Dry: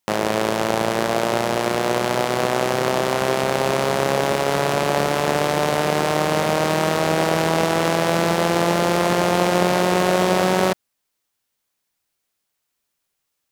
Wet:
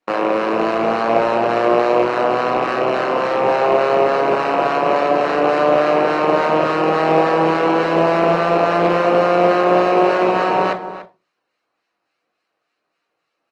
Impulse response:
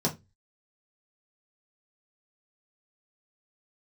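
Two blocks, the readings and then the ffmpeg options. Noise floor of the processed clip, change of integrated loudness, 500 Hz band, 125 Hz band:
-75 dBFS, +3.5 dB, +5.0 dB, -4.0 dB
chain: -filter_complex "[0:a]adynamicequalizer=threshold=0.00891:dfrequency=1000:dqfactor=7.3:tfrequency=1000:tqfactor=7.3:attack=5:release=100:ratio=0.375:range=2:mode=boostabove:tftype=bell,acontrast=60,alimiter=limit=0.355:level=0:latency=1:release=255,asplit=2[s0][s1];[s1]adelay=291.5,volume=0.224,highshelf=f=4000:g=-6.56[s2];[s0][s2]amix=inputs=2:normalize=0,acrossover=split=1200[s3][s4];[s3]aeval=exprs='val(0)*(1-0.5/2+0.5/2*cos(2*PI*3.5*n/s))':c=same[s5];[s4]aeval=exprs='val(0)*(1-0.5/2-0.5/2*cos(2*PI*3.5*n/s))':c=same[s6];[s5][s6]amix=inputs=2:normalize=0,aeval=exprs='0.398*(cos(1*acos(clip(val(0)/0.398,-1,1)))-cos(1*PI/2))+0.0282*(cos(6*acos(clip(val(0)/0.398,-1,1)))-cos(6*PI/2))':c=same,aeval=exprs='0.237*(abs(mod(val(0)/0.237+3,4)-2)-1)':c=same,asplit=2[s7][s8];[1:a]atrim=start_sample=2205,asetrate=31752,aresample=44100[s9];[s8][s9]afir=irnorm=-1:irlink=0,volume=0.282[s10];[s7][s10]amix=inputs=2:normalize=0,acrusher=bits=5:mode=log:mix=0:aa=0.000001,highpass=440,lowpass=2200,volume=1.78" -ar 48000 -c:a libopus -b:a 24k

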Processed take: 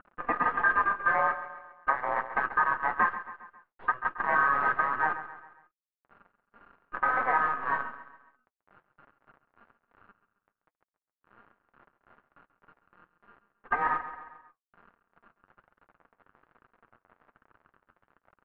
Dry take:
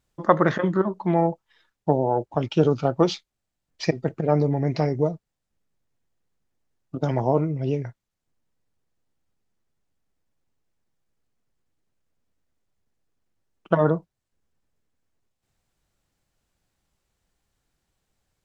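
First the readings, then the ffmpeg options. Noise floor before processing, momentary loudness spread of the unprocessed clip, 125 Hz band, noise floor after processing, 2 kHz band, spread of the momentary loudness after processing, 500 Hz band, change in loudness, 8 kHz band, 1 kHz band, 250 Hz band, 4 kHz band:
-82 dBFS, 9 LU, -27.0 dB, under -85 dBFS, +10.5 dB, 15 LU, -16.0 dB, -4.0 dB, no reading, +2.0 dB, -21.0 dB, under -15 dB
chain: -filter_complex "[0:a]equalizer=f=200:w=2.2:g=10,acompressor=mode=upward:threshold=0.0355:ratio=2.5,aeval=exprs='val(0)*sin(2*PI*1400*n/s)':c=same,flanger=delay=4:depth=5.8:regen=-5:speed=0.14:shape=sinusoidal,aresample=11025,acrusher=bits=5:dc=4:mix=0:aa=0.000001,aresample=44100,lowpass=f=1500:w=0.5412,lowpass=f=1500:w=1.3066,asplit=2[s0][s1];[s1]aecho=0:1:135|270|405|540:0.211|0.0972|0.0447|0.0206[s2];[s0][s2]amix=inputs=2:normalize=0,alimiter=limit=0.168:level=0:latency=1:release=425,lowshelf=f=330:g=-8.5,flanger=delay=2.1:depth=9.3:regen=-57:speed=1.2:shape=triangular,volume=2.24"

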